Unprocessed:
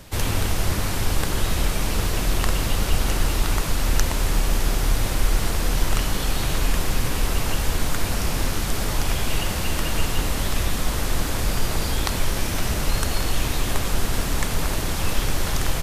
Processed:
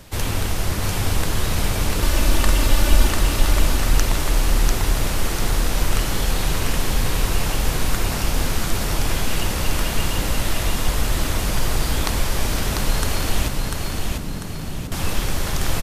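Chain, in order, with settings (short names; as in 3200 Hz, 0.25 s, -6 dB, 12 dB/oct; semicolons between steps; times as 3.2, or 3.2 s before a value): 2.02–3.08 comb 3.4 ms, depth 93%; 13.48–14.92 band-pass 170 Hz, Q 1.3; on a send: feedback echo 0.695 s, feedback 47%, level -3.5 dB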